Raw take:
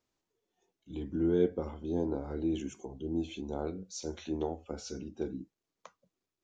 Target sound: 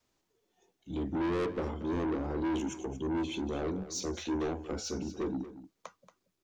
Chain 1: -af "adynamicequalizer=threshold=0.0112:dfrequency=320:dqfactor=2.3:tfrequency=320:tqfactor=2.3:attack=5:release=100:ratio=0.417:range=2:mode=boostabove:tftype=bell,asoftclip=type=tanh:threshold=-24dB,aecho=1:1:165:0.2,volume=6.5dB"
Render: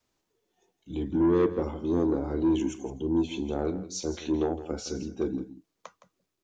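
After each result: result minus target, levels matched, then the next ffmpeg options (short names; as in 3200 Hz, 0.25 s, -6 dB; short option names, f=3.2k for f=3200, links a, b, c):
echo 65 ms early; soft clip: distortion -8 dB
-af "adynamicequalizer=threshold=0.0112:dfrequency=320:dqfactor=2.3:tfrequency=320:tqfactor=2.3:attack=5:release=100:ratio=0.417:range=2:mode=boostabove:tftype=bell,asoftclip=type=tanh:threshold=-24dB,aecho=1:1:230:0.2,volume=6.5dB"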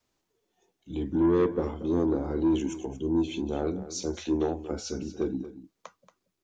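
soft clip: distortion -8 dB
-af "adynamicequalizer=threshold=0.0112:dfrequency=320:dqfactor=2.3:tfrequency=320:tqfactor=2.3:attack=5:release=100:ratio=0.417:range=2:mode=boostabove:tftype=bell,asoftclip=type=tanh:threshold=-35.5dB,aecho=1:1:230:0.2,volume=6.5dB"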